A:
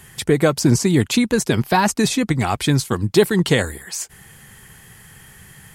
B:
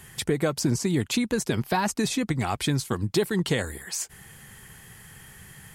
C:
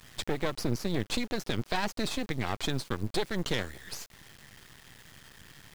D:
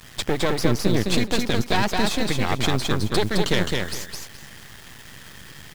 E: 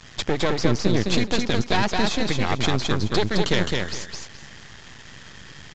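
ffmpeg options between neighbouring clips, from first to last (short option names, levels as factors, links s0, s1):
-af "acompressor=threshold=0.0794:ratio=2,volume=0.708"
-af "lowpass=f=4300:t=q:w=1.8,acrusher=bits=5:dc=4:mix=0:aa=0.000001,aeval=exprs='max(val(0),0)':c=same,volume=0.708"
-af "aecho=1:1:212|424|636:0.708|0.149|0.0312,volume=2.51"
-af "aresample=16000,aresample=44100"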